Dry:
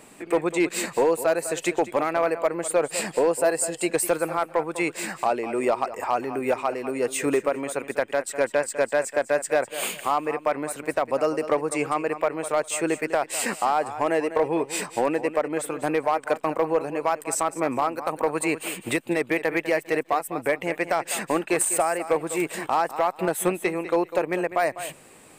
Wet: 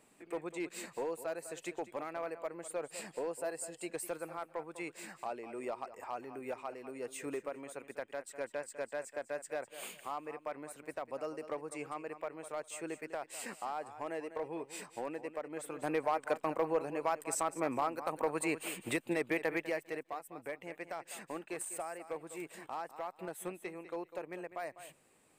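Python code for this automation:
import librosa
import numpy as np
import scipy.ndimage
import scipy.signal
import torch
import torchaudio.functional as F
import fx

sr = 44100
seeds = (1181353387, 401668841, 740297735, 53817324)

y = fx.gain(x, sr, db=fx.line((15.45, -17.0), (15.95, -9.5), (19.49, -9.5), (20.1, -18.5)))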